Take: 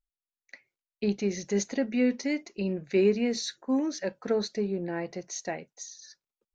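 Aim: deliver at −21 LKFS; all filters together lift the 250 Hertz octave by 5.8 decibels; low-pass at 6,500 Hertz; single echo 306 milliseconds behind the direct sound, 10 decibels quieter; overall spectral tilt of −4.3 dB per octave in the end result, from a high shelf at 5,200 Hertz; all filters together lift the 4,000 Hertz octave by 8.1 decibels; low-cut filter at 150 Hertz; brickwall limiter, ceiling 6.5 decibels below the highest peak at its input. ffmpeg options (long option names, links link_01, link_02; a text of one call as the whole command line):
ffmpeg -i in.wav -af "highpass=150,lowpass=6500,equalizer=frequency=250:width_type=o:gain=7.5,equalizer=frequency=4000:width_type=o:gain=6.5,highshelf=frequency=5200:gain=7.5,alimiter=limit=-16.5dB:level=0:latency=1,aecho=1:1:306:0.316,volume=6dB" out.wav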